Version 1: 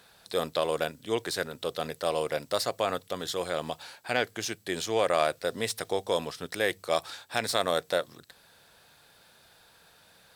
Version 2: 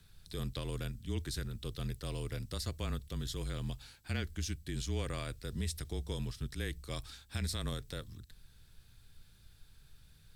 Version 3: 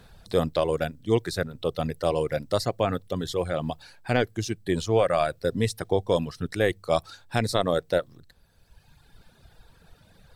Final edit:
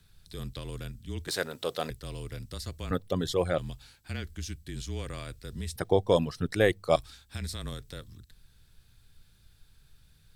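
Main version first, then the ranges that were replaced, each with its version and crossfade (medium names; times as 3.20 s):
2
1.28–1.90 s: from 1
2.91–3.58 s: from 3
5.76–6.96 s: from 3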